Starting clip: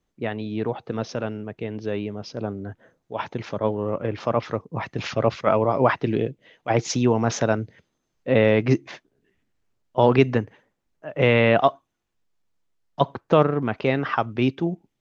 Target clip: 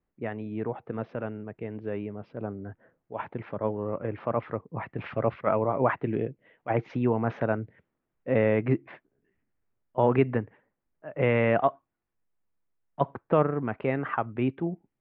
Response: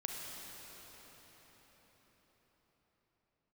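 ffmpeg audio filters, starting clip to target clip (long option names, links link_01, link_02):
-af "lowpass=frequency=2300:width=0.5412,lowpass=frequency=2300:width=1.3066,volume=-5.5dB"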